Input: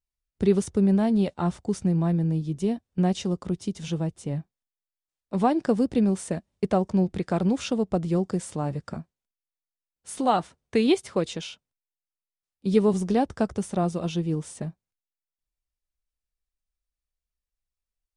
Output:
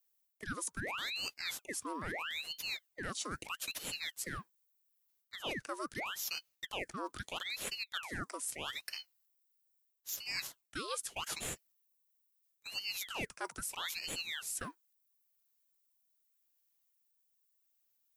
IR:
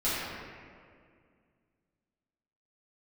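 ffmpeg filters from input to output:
-af "aemphasis=mode=production:type=riaa,areverse,acompressor=threshold=-34dB:ratio=10,areverse,afreqshift=470,aeval=exprs='val(0)*sin(2*PI*2000*n/s+2000*0.85/0.78*sin(2*PI*0.78*n/s))':channel_layout=same"

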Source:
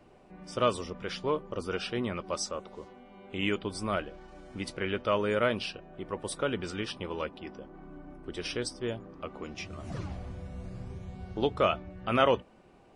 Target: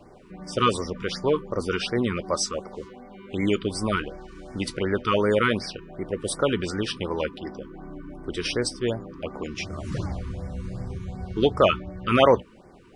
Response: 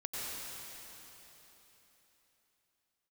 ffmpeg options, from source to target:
-af "afftfilt=real='re*(1-between(b*sr/1024,620*pow(3300/620,0.5+0.5*sin(2*PI*2.7*pts/sr))/1.41,620*pow(3300/620,0.5+0.5*sin(2*PI*2.7*pts/sr))*1.41))':imag='im*(1-between(b*sr/1024,620*pow(3300/620,0.5+0.5*sin(2*PI*2.7*pts/sr))/1.41,620*pow(3300/620,0.5+0.5*sin(2*PI*2.7*pts/sr))*1.41))':win_size=1024:overlap=0.75,volume=8dB"

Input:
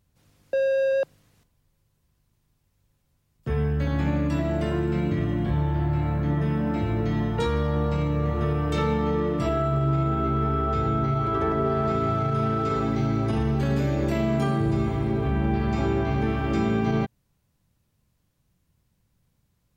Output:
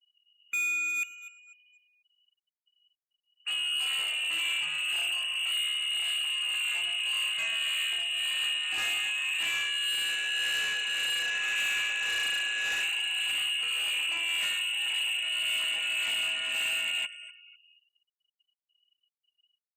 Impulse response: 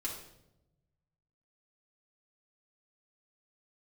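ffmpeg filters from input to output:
-filter_complex "[0:a]tremolo=f=1.8:d=0.44,lowpass=frequency=2600:width_type=q:width=0.5098,lowpass=frequency=2600:width_type=q:width=0.6013,lowpass=frequency=2600:width_type=q:width=0.9,lowpass=frequency=2600:width_type=q:width=2.563,afreqshift=-3000,asoftclip=type=tanh:threshold=-29dB,asplit=2[link_01][link_02];[link_02]aecho=0:1:248|496|744|992:0.2|0.0778|0.0303|0.0118[link_03];[link_01][link_03]amix=inputs=2:normalize=0,afftfilt=real='re*gte(hypot(re,im),0.00282)':imag='im*gte(hypot(re,im),0.00282)':win_size=1024:overlap=0.75,volume=1.5dB" -ar 48000 -c:a libopus -b:a 64k

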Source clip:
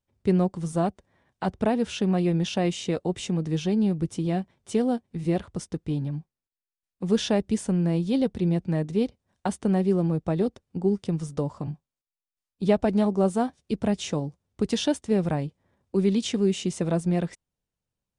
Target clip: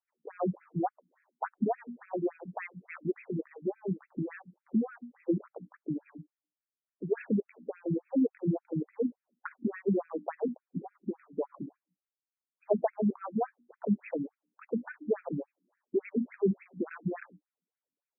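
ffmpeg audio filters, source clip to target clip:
ffmpeg -i in.wav -af "bandreject=frequency=60:width_type=h:width=6,bandreject=frequency=120:width_type=h:width=6,bandreject=frequency=180:width_type=h:width=6,bandreject=frequency=240:width_type=h:width=6,bandreject=frequency=300:width_type=h:width=6,afftfilt=real='re*between(b*sr/1024,230*pow(1900/230,0.5+0.5*sin(2*PI*3.5*pts/sr))/1.41,230*pow(1900/230,0.5+0.5*sin(2*PI*3.5*pts/sr))*1.41)':imag='im*between(b*sr/1024,230*pow(1900/230,0.5+0.5*sin(2*PI*3.5*pts/sr))/1.41,230*pow(1900/230,0.5+0.5*sin(2*PI*3.5*pts/sr))*1.41)':win_size=1024:overlap=0.75" out.wav

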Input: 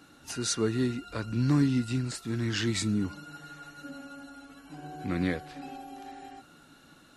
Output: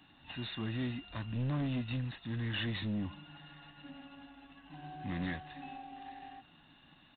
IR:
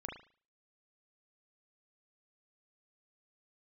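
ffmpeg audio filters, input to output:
-af "aemphasis=mode=production:type=75kf,aecho=1:1:1.1:0.82,aresample=11025,asoftclip=type=tanh:threshold=-23dB,aresample=44100,aeval=exprs='0.0841*(cos(1*acos(clip(val(0)/0.0841,-1,1)))-cos(1*PI/2))+0.000473*(cos(7*acos(clip(val(0)/0.0841,-1,1)))-cos(7*PI/2))':channel_layout=same,volume=-7dB" -ar 8000 -c:a adpcm_g726 -b:a 24k

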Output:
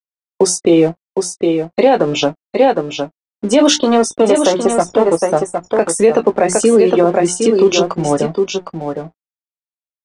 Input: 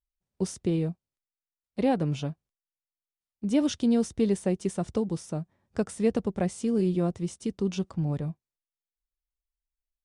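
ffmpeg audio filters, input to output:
ffmpeg -i in.wav -filter_complex "[0:a]asettb=1/sr,asplit=3[link_01][link_02][link_03];[link_01]atrim=end=3.754[link_04];[link_02]atrim=start=3.75:end=5.89,asetpts=PTS-STARTPTS,afade=type=in:duration=0.004:curve=qsin,afade=type=out:start_time=2.136:duration=0.004:curve=qsin,aeval=exprs='if(lt(val(0),0),0.251*val(0),val(0))':channel_layout=same[link_05];[link_03]atrim=start=5.886[link_06];[link_04][link_05]acrossfade=duration=0.004:curve1=hsin:curve2=qsin[link_07];[link_07][link_06]acrossfade=duration=0.004:curve1=qsin:curve2=hsin,afftfilt=real='re*gte(hypot(re,im),0.00631)':imag='im*gte(hypot(re,im),0.00631)':win_size=1024:overlap=0.75,highpass=270,bandreject=frequency=60:width_type=h:width=6,bandreject=frequency=120:width_type=h:width=6,bandreject=frequency=180:width_type=h:width=6,bandreject=frequency=240:width_type=h:width=6,bandreject=frequency=300:width_type=h:width=6,bandreject=frequency=360:width_type=h:width=6,acrossover=split=350[link_08][link_09];[link_08]acompressor=threshold=-56dB:ratio=2[link_10];[link_10][link_09]amix=inputs=2:normalize=0,acrossover=split=1500[link_11][link_12];[link_11]aeval=exprs='sgn(val(0))*max(abs(val(0))-0.00106,0)':channel_layout=same[link_13];[link_12]flanger=delay=16.5:depth=7.8:speed=1.5[link_14];[link_13][link_14]amix=inputs=2:normalize=0,asplit=2[link_15][link_16];[link_16]adelay=18,volume=-12dB[link_17];[link_15][link_17]amix=inputs=2:normalize=0,asplit=2[link_18][link_19];[link_19]aecho=0:1:761:0.447[link_20];[link_18][link_20]amix=inputs=2:normalize=0,aresample=22050,aresample=44100,alimiter=level_in=27.5dB:limit=-1dB:release=50:level=0:latency=1,volume=-1dB" out.wav

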